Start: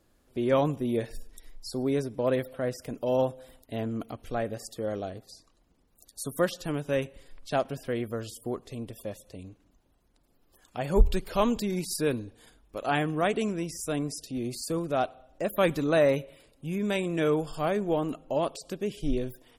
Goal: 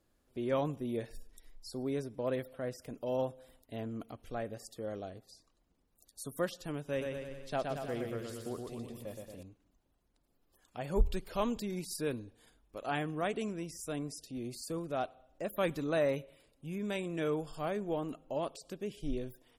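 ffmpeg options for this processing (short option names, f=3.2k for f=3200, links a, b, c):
-filter_complex "[0:a]asettb=1/sr,asplit=3[a][b][c];[a]atrim=end=6.834[d];[b]atrim=start=6.83:end=9.43,asetpts=PTS-STARTPTS,afade=t=in:d=0.004:c=qsin,afade=t=out:st=2.596:d=0.004:c=qsin,aecho=1:1:120|228|325.2|412.7|491.4:0.631|0.398|0.251|0.158|0.1,atrim=end_sample=114660[e];[c]atrim=start=9.426[f];[d][e]acrossfade=d=0.004:c1=hsin:c2=qsin[g];[g][f]acrossfade=d=0.004:c1=qsin:c2=hsin,volume=-8dB"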